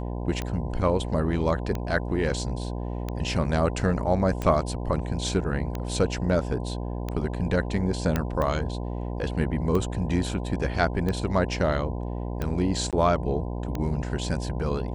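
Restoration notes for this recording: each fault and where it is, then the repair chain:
buzz 60 Hz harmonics 17 -31 dBFS
tick 45 rpm -16 dBFS
8.16 s: pop -11 dBFS
12.91–12.93 s: dropout 17 ms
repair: de-click; de-hum 60 Hz, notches 17; interpolate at 12.91 s, 17 ms

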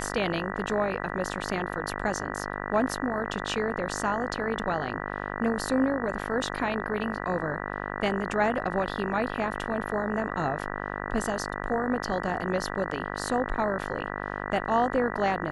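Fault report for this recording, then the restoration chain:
buzz 50 Hz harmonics 39 -34 dBFS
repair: de-hum 50 Hz, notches 39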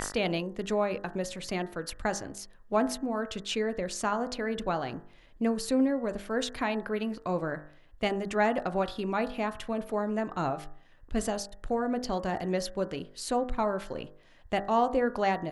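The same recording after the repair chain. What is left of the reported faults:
nothing left

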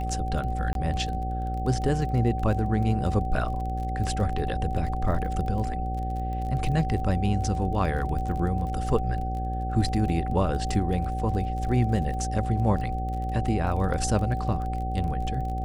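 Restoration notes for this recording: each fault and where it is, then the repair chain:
buzz 60 Hz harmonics 12 -30 dBFS
crackle 25 per s -33 dBFS
whine 760 Hz -32 dBFS
0.73–0.75 s: dropout 22 ms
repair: de-click; band-stop 760 Hz, Q 30; de-hum 60 Hz, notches 12; interpolate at 0.73 s, 22 ms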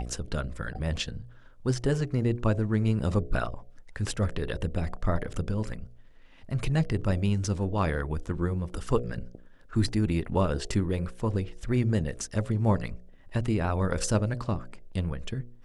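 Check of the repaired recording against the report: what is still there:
nothing left

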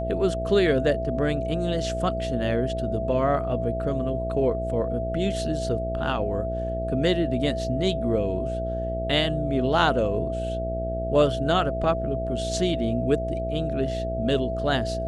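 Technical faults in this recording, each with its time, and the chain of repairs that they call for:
buzz 60 Hz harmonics 12 -31 dBFS
whine 660 Hz -29 dBFS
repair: de-hum 60 Hz, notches 12; band-stop 660 Hz, Q 30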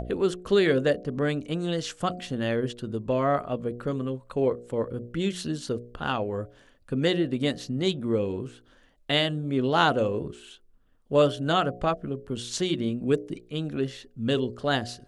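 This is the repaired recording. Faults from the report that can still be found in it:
nothing left

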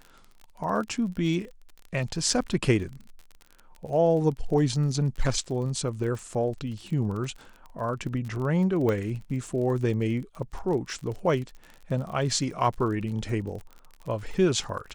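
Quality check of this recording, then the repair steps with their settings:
crackle 37 per s -35 dBFS
8.89 s: pop -16 dBFS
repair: de-click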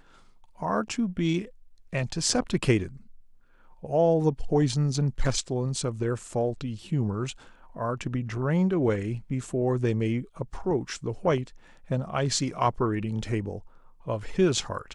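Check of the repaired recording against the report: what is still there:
nothing left

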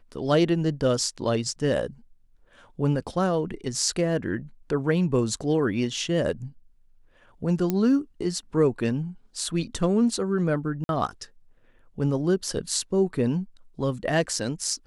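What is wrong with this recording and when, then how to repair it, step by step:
7.70 s: pop -12 dBFS
10.84–10.89 s: dropout 51 ms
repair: de-click; interpolate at 10.84 s, 51 ms

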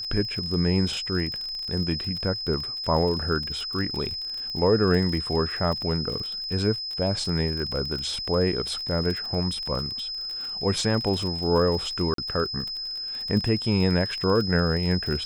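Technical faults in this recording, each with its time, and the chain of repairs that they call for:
crackle 40 per s -30 dBFS
whine 5.1 kHz -30 dBFS
12.14–12.18 s: dropout 43 ms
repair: de-click; band-stop 5.1 kHz, Q 30; interpolate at 12.14 s, 43 ms

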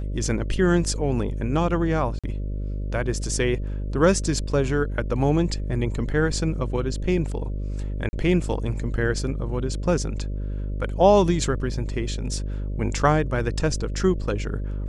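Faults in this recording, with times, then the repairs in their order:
buzz 50 Hz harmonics 12 -28 dBFS
2.19–2.24 s: dropout 46 ms
8.09–8.13 s: dropout 40 ms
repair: de-hum 50 Hz, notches 12; interpolate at 2.19 s, 46 ms; interpolate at 8.09 s, 40 ms

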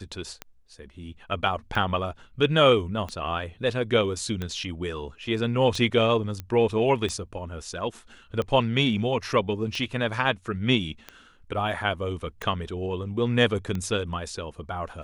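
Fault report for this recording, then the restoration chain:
tick 45 rpm -18 dBFS
6.40 s: pop -19 dBFS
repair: de-click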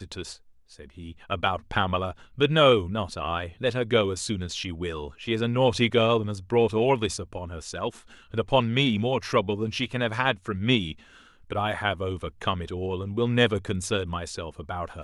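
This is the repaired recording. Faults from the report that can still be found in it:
nothing left

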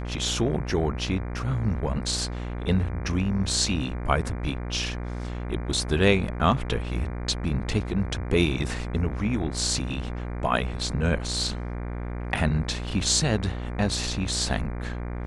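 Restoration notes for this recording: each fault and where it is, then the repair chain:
buzz 60 Hz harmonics 40 -32 dBFS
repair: de-hum 60 Hz, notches 40

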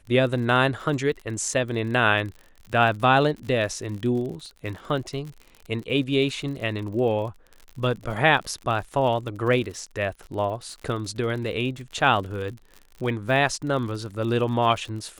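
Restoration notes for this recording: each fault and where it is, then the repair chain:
crackle 54 per s -33 dBFS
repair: de-click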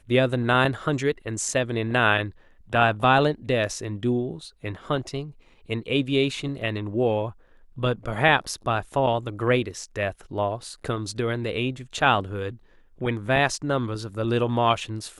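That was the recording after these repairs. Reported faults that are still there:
nothing left

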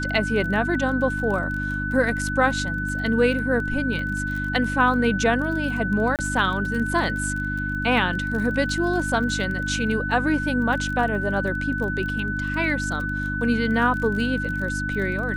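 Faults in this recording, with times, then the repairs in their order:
crackle 25 per s -30 dBFS
hum 50 Hz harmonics 6 -29 dBFS
whine 1.5 kHz -27 dBFS
6.16–6.19 s: dropout 28 ms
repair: de-click; de-hum 50 Hz, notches 6; band-stop 1.5 kHz, Q 30; interpolate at 6.16 s, 28 ms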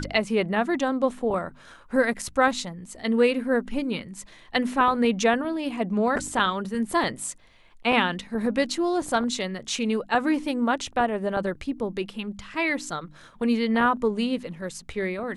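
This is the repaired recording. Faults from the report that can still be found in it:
nothing left

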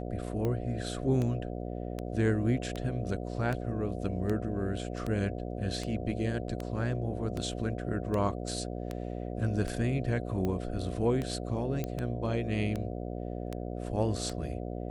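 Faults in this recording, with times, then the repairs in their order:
buzz 60 Hz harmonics 12 -37 dBFS
tick 78 rpm -21 dBFS
11.84 s: pop -20 dBFS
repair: de-click; de-hum 60 Hz, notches 12

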